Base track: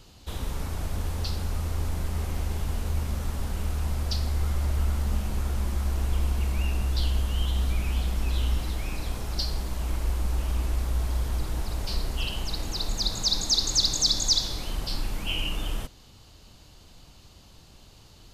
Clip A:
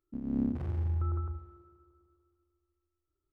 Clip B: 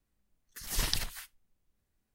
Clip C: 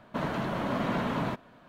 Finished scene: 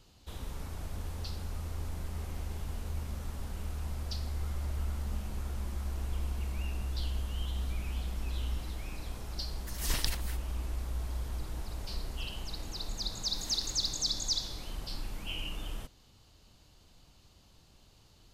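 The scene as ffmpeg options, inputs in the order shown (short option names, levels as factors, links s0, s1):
-filter_complex "[2:a]asplit=2[s0][s1];[0:a]volume=0.355[s2];[s0]acontrast=56,atrim=end=2.14,asetpts=PTS-STARTPTS,volume=0.422,afade=t=in:d=0.004:c=hsin,afade=t=out:st=2.136:d=0.004:c=hsin,adelay=9110[s3];[s1]atrim=end=2.14,asetpts=PTS-STARTPTS,volume=0.158,afade=t=in:d=0.004:c=hsin,afade=t=out:st=2.136:d=0.004:c=hsin,adelay=559188S[s4];[s2][s3][s4]amix=inputs=3:normalize=0"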